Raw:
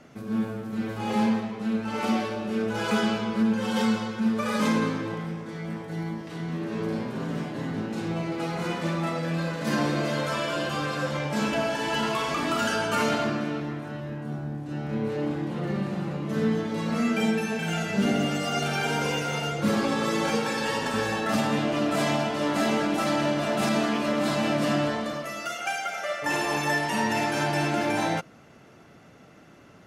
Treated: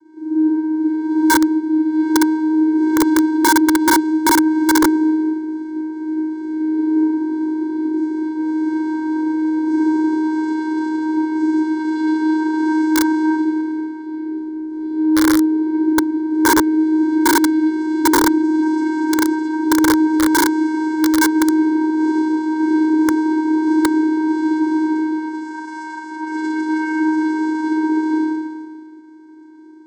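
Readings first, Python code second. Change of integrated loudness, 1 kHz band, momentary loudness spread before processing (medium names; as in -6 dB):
+10.0 dB, +7.5 dB, 7 LU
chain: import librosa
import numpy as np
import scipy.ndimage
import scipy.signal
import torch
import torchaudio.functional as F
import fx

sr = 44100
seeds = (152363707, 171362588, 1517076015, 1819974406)

p1 = x + fx.room_early_taps(x, sr, ms=(34, 57, 67, 78), db=(-5.0, -14.5, -12.5, -17.0), dry=0)
p2 = fx.rev_schroeder(p1, sr, rt60_s=1.5, comb_ms=32, drr_db=-7.0)
p3 = 10.0 ** (-12.0 / 20.0) * np.tanh(p2 / 10.0 ** (-12.0 / 20.0))
p4 = p2 + (p3 * librosa.db_to_amplitude(-3.0))
p5 = fx.low_shelf(p4, sr, hz=300.0, db=10.5)
p6 = fx.hum_notches(p5, sr, base_hz=60, count=8)
p7 = fx.vocoder(p6, sr, bands=8, carrier='square', carrier_hz=313.0)
p8 = (np.mod(10.0 ** (2.5 / 20.0) * p7 + 1.0, 2.0) - 1.0) / 10.0 ** (2.5 / 20.0)
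p9 = fx.fixed_phaser(p8, sr, hz=720.0, stages=6)
y = p9 * librosa.db_to_amplitude(-3.5)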